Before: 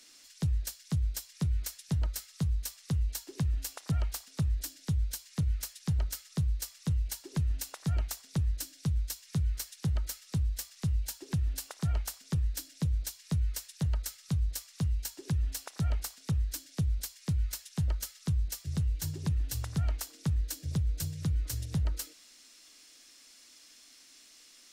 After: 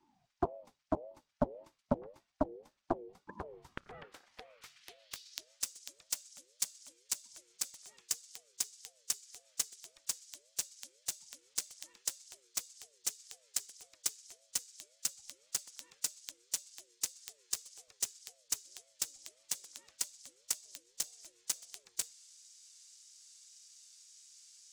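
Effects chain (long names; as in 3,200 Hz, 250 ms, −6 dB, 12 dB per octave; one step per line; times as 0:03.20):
band-pass filter sweep 290 Hz → 7,000 Hz, 0:03.18–0:05.61
harmonic generator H 7 −14 dB, 8 −43 dB, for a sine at −26 dBFS
ring modulator whose carrier an LFO sweeps 510 Hz, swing 20%, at 1.8 Hz
level +14 dB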